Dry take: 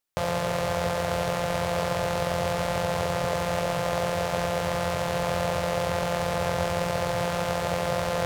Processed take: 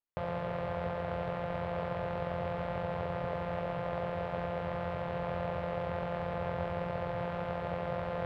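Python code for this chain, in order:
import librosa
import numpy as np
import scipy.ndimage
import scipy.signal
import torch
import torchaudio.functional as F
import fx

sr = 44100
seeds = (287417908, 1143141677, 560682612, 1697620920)

y = fx.air_absorb(x, sr, metres=480.0)
y = F.gain(torch.from_numpy(y), -7.0).numpy()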